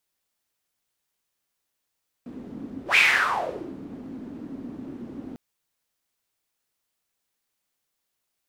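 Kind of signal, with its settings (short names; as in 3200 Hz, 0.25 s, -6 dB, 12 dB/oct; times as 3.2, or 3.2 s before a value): whoosh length 3.10 s, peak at 0.7, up 0.11 s, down 0.86 s, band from 260 Hz, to 2400 Hz, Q 5.7, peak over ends 19.5 dB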